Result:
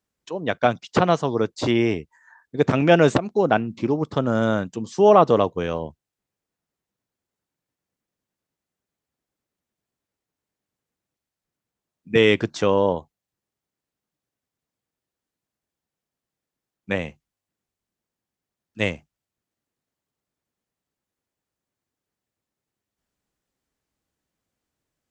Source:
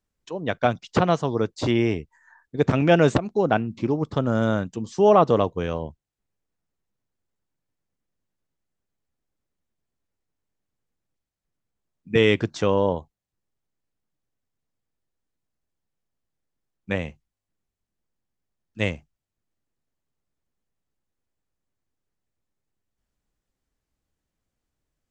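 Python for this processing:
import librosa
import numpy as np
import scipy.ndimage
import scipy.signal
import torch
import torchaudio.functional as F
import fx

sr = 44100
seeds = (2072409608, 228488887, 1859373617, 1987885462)

y = fx.highpass(x, sr, hz=150.0, slope=6)
y = F.gain(torch.from_numpy(y), 2.5).numpy()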